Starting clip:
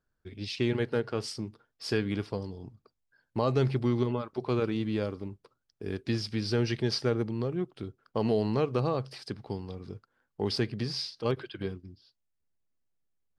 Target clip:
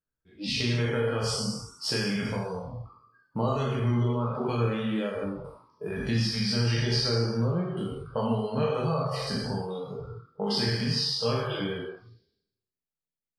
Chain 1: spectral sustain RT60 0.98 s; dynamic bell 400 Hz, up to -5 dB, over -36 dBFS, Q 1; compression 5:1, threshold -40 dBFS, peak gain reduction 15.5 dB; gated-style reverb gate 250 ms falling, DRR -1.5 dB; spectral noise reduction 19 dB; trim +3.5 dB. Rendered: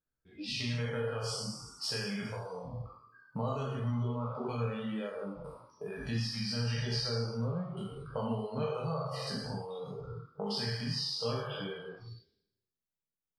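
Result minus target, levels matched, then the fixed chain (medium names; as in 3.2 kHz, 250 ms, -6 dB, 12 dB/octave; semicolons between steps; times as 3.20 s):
compression: peak gain reduction +7 dB
spectral sustain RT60 0.98 s; dynamic bell 400 Hz, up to -5 dB, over -36 dBFS, Q 1; compression 5:1, threshold -31 dBFS, peak gain reduction 8.5 dB; gated-style reverb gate 250 ms falling, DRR -1.5 dB; spectral noise reduction 19 dB; trim +3.5 dB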